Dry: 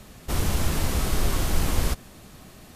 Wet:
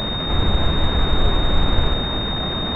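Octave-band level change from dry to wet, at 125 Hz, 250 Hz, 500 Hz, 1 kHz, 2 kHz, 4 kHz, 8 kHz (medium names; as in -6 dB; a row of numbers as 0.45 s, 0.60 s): +6.0 dB, +7.5 dB, +8.5 dB, +8.5 dB, +6.0 dB, +15.0 dB, under -20 dB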